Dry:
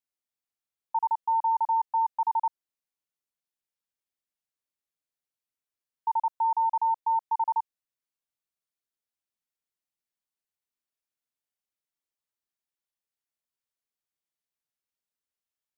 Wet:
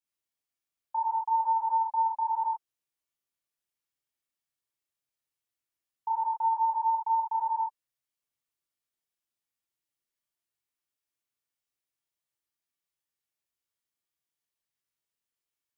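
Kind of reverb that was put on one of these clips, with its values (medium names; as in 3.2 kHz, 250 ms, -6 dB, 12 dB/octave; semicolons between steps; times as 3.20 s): gated-style reverb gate 100 ms flat, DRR -5.5 dB; trim -5.5 dB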